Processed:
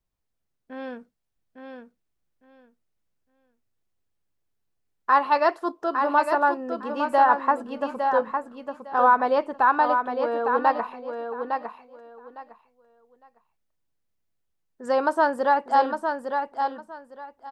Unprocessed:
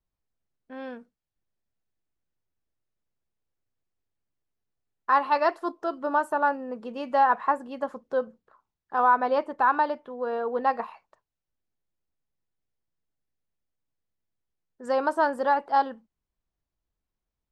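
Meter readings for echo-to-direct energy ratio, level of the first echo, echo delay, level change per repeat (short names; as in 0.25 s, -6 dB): -6.0 dB, -6.0 dB, 0.857 s, -14.0 dB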